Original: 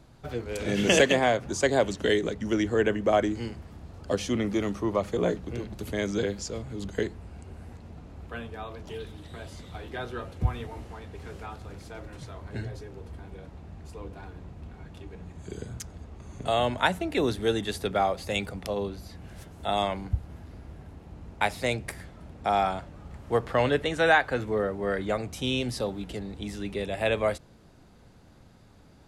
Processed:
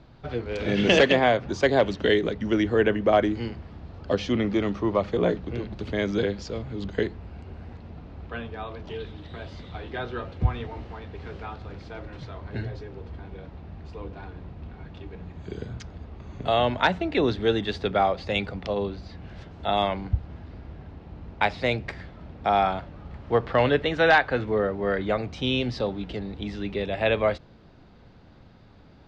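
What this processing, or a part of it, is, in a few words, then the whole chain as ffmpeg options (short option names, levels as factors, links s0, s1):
synthesiser wavefolder: -af "aeval=exprs='0.251*(abs(mod(val(0)/0.251+3,4)-2)-1)':c=same,lowpass=f=4600:w=0.5412,lowpass=f=4600:w=1.3066,volume=1.41"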